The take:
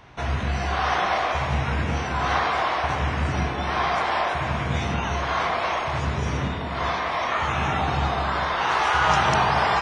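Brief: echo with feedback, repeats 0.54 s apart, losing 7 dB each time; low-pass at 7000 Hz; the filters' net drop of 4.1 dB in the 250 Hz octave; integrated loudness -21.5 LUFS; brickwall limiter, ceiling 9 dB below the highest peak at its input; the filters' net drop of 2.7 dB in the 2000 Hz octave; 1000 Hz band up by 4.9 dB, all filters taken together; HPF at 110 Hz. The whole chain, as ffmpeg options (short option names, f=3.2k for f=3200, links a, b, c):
-af "highpass=110,lowpass=7k,equalizer=f=250:t=o:g=-6,equalizer=f=1k:t=o:g=8,equalizer=f=2k:t=o:g=-7,alimiter=limit=-12.5dB:level=0:latency=1,aecho=1:1:540|1080|1620|2160|2700:0.447|0.201|0.0905|0.0407|0.0183,volume=0.5dB"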